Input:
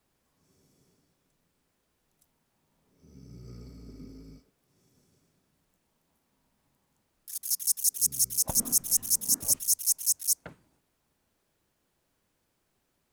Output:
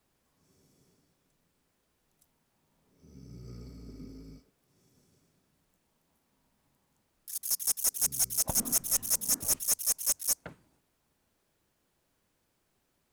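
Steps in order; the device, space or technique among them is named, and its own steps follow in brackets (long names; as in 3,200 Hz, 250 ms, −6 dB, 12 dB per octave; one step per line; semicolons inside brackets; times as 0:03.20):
saturation between pre-emphasis and de-emphasis (high-shelf EQ 2,100 Hz +10 dB; soft clipping −6.5 dBFS, distortion −12 dB; high-shelf EQ 2,100 Hz −10 dB)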